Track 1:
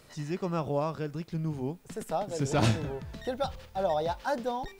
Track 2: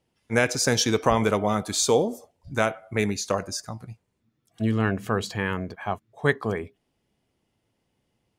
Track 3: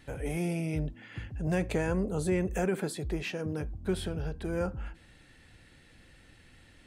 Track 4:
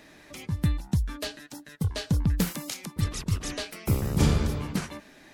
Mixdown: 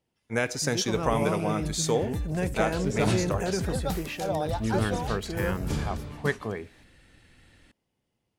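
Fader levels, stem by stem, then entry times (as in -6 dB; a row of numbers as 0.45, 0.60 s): -1.5, -5.5, 0.0, -8.0 dB; 0.45, 0.00, 0.85, 1.50 s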